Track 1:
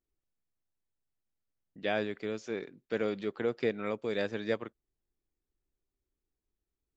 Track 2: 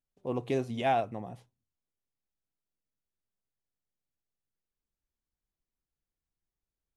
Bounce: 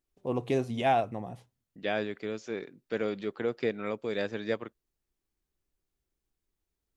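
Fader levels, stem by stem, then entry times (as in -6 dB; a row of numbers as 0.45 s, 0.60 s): +0.5 dB, +2.0 dB; 0.00 s, 0.00 s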